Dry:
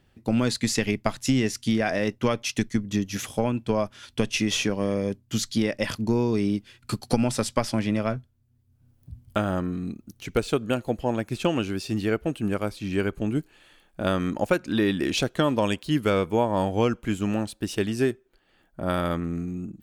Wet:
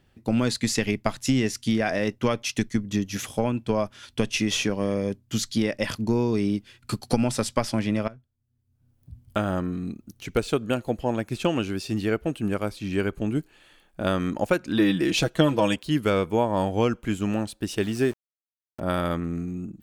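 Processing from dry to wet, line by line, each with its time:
8.08–9.48 s: fade in, from -19.5 dB
14.78–15.76 s: comb 6.2 ms, depth 73%
17.82–18.80 s: small samples zeroed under -39.5 dBFS

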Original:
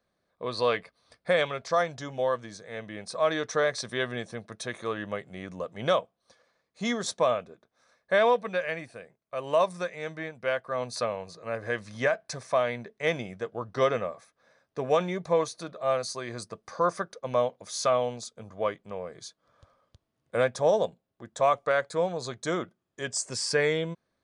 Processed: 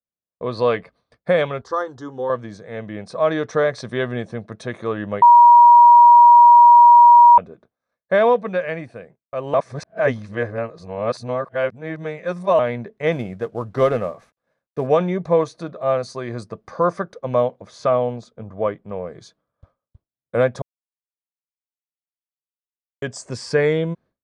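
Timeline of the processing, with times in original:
1.61–2.30 s: static phaser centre 630 Hz, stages 6
5.22–7.38 s: bleep 955 Hz -10.5 dBFS
9.54–12.59 s: reverse
13.12–14.87 s: CVSD coder 64 kbps
17.60–18.92 s: treble shelf 4.4 kHz -11.5 dB
20.62–23.02 s: mute
whole clip: expander -52 dBFS; low-pass 1.9 kHz 6 dB/octave; bass shelf 430 Hz +6 dB; trim +5.5 dB

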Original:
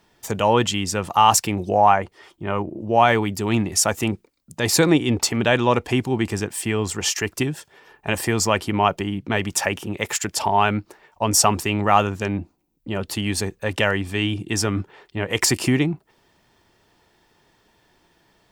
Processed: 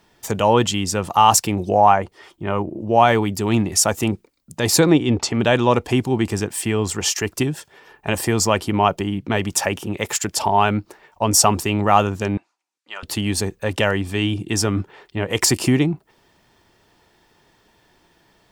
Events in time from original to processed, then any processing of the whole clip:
4.80–5.40 s: distance through air 75 m
12.37–13.03 s: Chebyshev band-pass 1.2–7.1 kHz
whole clip: dynamic bell 2 kHz, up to -4 dB, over -35 dBFS, Q 1.1; trim +2.5 dB

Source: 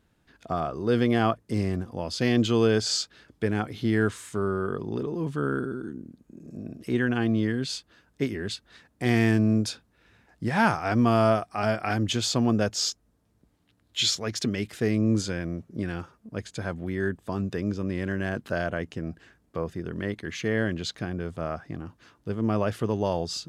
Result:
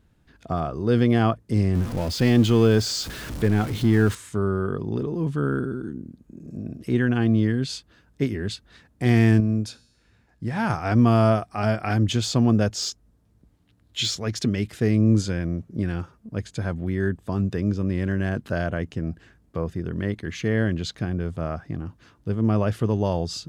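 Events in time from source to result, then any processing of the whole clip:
1.75–4.15 s: jump at every zero crossing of -32 dBFS
9.40–10.70 s: feedback comb 120 Hz, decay 1.1 s, mix 50%
whole clip: de-esser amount 50%; bass shelf 190 Hz +10 dB

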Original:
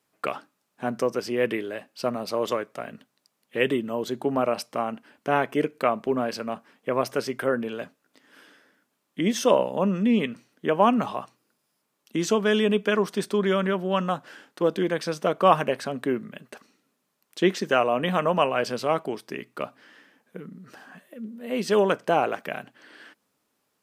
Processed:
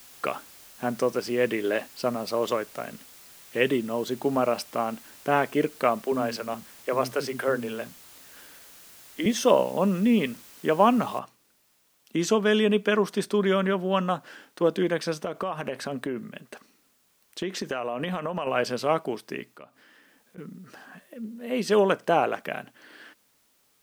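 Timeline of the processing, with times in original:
1.64–1.87 s: time-frequency box 210–6400 Hz +8 dB
6.06–9.26 s: bands offset in time highs, lows 50 ms, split 270 Hz
11.19 s: noise floor step -50 dB -67 dB
15.20–18.47 s: compression 12:1, threshold -25 dBFS
19.51–20.38 s: compression 2:1, threshold -55 dBFS

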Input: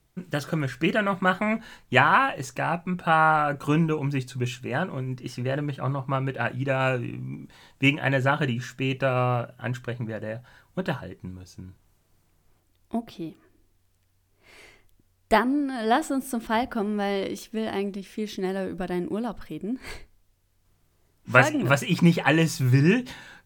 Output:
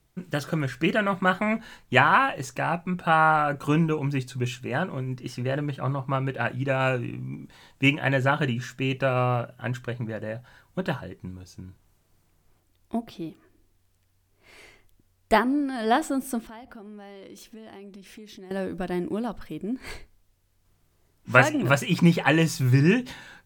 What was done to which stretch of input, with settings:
16.40–18.51 s: compression 5:1, threshold -42 dBFS

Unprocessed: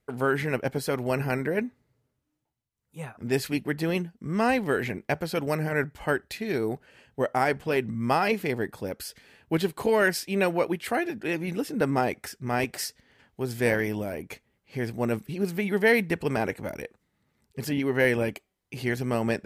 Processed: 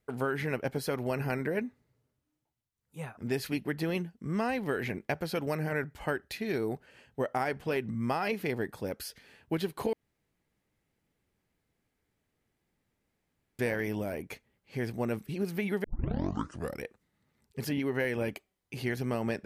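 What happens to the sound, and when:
9.93–13.59 s: room tone
15.84 s: tape start 0.99 s
whole clip: dynamic bell 7.7 kHz, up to -6 dB, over -59 dBFS, Q 3.9; compression, threshold -24 dBFS; trim -2.5 dB

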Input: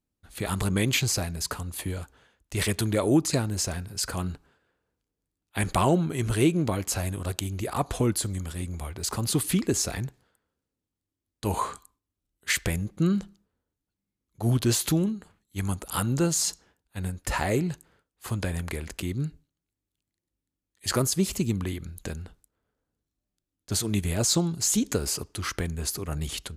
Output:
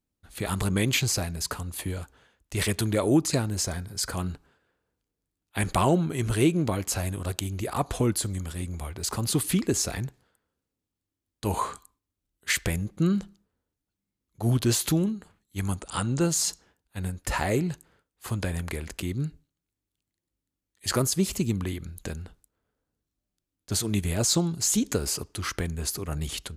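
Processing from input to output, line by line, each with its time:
3.64–4.11 s: Butterworth band-stop 2.7 kHz, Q 7.3
15.80–16.21 s: Chebyshev low-pass 9.3 kHz, order 6

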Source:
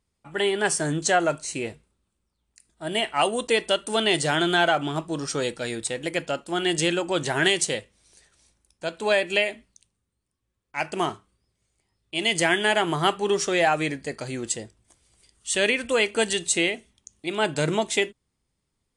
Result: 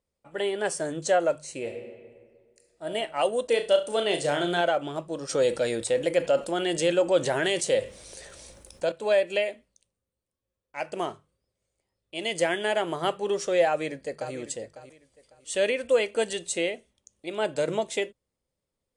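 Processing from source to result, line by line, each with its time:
1.59–2.86 s: reverb throw, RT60 1.8 s, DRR 3 dB
3.46–4.61 s: flutter echo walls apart 5.9 m, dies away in 0.29 s
5.29–8.92 s: level flattener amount 50%
13.66–14.34 s: echo throw 550 ms, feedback 25%, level -12.5 dB
whole clip: peaking EQ 540 Hz +13.5 dB 0.52 oct; hum notches 50/100/150 Hz; trim -8 dB

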